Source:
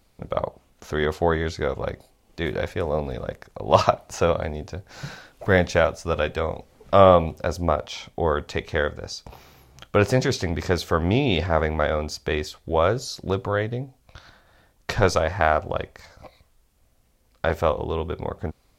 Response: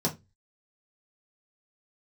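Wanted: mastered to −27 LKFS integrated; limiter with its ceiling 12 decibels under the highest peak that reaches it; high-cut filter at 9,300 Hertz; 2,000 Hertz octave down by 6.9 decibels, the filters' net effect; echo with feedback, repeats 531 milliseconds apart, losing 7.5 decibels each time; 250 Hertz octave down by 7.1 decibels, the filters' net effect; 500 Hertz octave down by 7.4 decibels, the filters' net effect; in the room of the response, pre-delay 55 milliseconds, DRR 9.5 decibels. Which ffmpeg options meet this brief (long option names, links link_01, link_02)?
-filter_complex "[0:a]lowpass=9300,equalizer=frequency=250:width_type=o:gain=-8.5,equalizer=frequency=500:width_type=o:gain=-6.5,equalizer=frequency=2000:width_type=o:gain=-9,alimiter=limit=-18dB:level=0:latency=1,aecho=1:1:531|1062|1593|2124|2655:0.422|0.177|0.0744|0.0312|0.0131,asplit=2[link_01][link_02];[1:a]atrim=start_sample=2205,adelay=55[link_03];[link_02][link_03]afir=irnorm=-1:irlink=0,volume=-17.5dB[link_04];[link_01][link_04]amix=inputs=2:normalize=0,volume=3dB"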